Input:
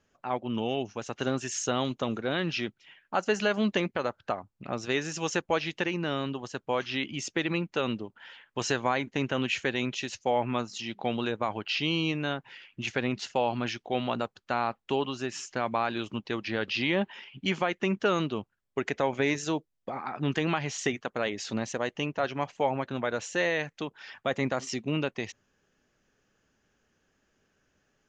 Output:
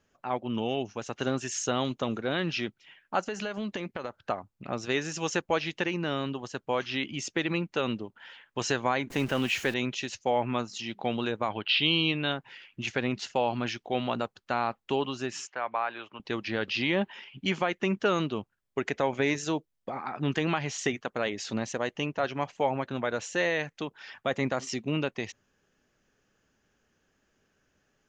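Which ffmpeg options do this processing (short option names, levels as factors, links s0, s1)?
-filter_complex "[0:a]asettb=1/sr,asplit=3[s0][s1][s2];[s0]atrim=end=3.224[s3];[s1]atrim=start=3.22:end=4.24,asetpts=PTS-STARTPTS,afade=t=in:d=0.004:c=qsin,afade=t=out:st=1.016:d=0.004:c=qsin,acompressor=threshold=0.0282:ratio=4:attack=3.2:release=140:knee=1:detection=peak[s4];[s2]atrim=start=4.236[s5];[s3][s4]acrossfade=d=0.004:c1=hsin:c2=qsin[s6];[s6][s5]acrossfade=d=0.004:c1=qsin:c2=hsin,asettb=1/sr,asplit=3[s7][s8][s9];[s7]atrim=end=9.104[s10];[s8]atrim=start=9.1:end=9.74,asetpts=PTS-STARTPTS,afade=t=in:d=0.004:c=qsin,afade=t=out:st=0.636:d=0.004:c=qsin,aeval=exprs='val(0)+0.5*0.0126*sgn(val(0))':c=same[s11];[s9]atrim=start=9.736[s12];[s10][s11]acrossfade=d=0.004:c1=hsin:c2=qsin[s13];[s13][s12]acrossfade=d=0.004:c1=qsin:c2=hsin,asettb=1/sr,asplit=3[s14][s15][s16];[s14]atrim=end=11.504[s17];[s15]atrim=start=11.5:end=12.32,asetpts=PTS-STARTPTS,afade=t=in:d=0.004:c=qsin,afade=t=out:st=0.816:d=0.004:c=qsin,highshelf=f=5300:t=q:w=3:g=-14[s18];[s16]atrim=start=12.316[s19];[s17][s18]acrossfade=d=0.004:c1=hsin:c2=qsin[s20];[s20][s19]acrossfade=d=0.004:c1=qsin:c2=hsin,asettb=1/sr,asplit=3[s21][s22][s23];[s21]atrim=end=15.474[s24];[s22]atrim=start=15.47:end=16.2,asetpts=PTS-STARTPTS,afade=t=in:d=0.004:c=qsin,afade=t=out:st=0.726:d=0.004:c=qsin,acrossover=split=530 2900:gain=0.112 1 0.0794[s25][s26][s27];[s25][s26][s27]amix=inputs=3:normalize=0[s28];[s23]atrim=start=16.196[s29];[s24][s28]acrossfade=d=0.004:c1=hsin:c2=qsin[s30];[s30][s29]acrossfade=d=0.004:c1=qsin:c2=hsin"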